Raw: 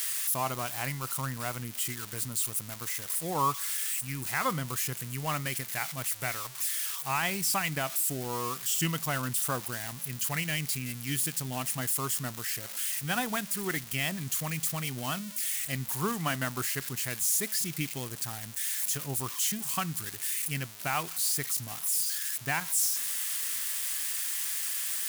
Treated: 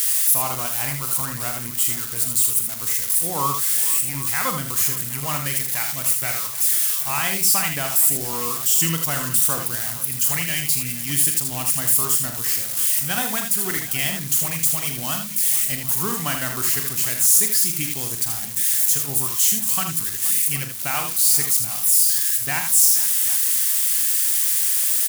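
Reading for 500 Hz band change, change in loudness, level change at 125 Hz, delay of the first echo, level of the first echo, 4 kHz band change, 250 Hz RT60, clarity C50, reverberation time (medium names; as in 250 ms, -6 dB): +4.0 dB, +12.0 dB, +4.0 dB, 42 ms, -9.0 dB, +8.5 dB, no reverb, no reverb, no reverb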